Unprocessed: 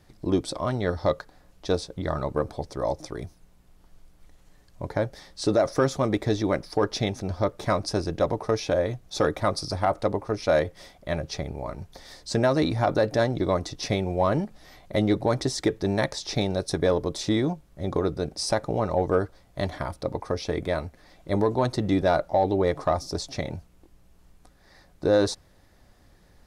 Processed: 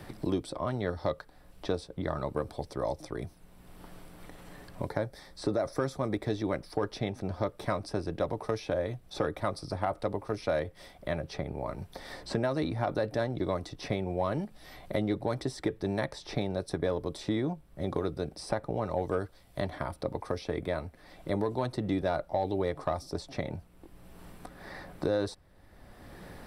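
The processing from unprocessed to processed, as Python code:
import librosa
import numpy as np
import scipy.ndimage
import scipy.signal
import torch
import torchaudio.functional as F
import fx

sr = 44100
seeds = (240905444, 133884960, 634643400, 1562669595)

y = fx.peak_eq(x, sr, hz=2900.0, db=-8.5, octaves=0.33, at=(4.88, 6.21))
y = fx.peak_eq(y, sr, hz=5400.0, db=-4.5, octaves=0.79)
y = fx.notch(y, sr, hz=6700.0, q=6.0)
y = fx.band_squash(y, sr, depth_pct=70)
y = F.gain(torch.from_numpy(y), -7.0).numpy()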